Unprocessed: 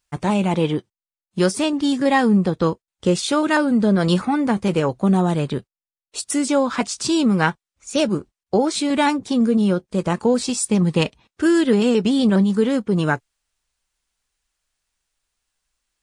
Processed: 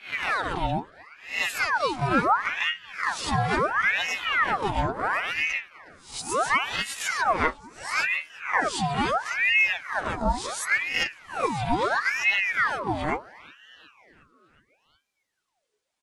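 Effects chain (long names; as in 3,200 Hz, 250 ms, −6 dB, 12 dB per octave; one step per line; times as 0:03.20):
peak hold with a rise ahead of every peak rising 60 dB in 0.38 s
in parallel at −1 dB: downward compressor, threshold −25 dBFS, peak gain reduction 13 dB
on the sum: high-shelf EQ 8,500 Hz −8.5 dB
stiff-string resonator 70 Hz, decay 0.23 s, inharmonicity 0.008
on a send: echo with shifted repeats 363 ms, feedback 64%, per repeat +120 Hz, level −24 dB
on the sum: ring modulator whose carrier an LFO sweeps 1,400 Hz, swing 70%, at 0.73 Hz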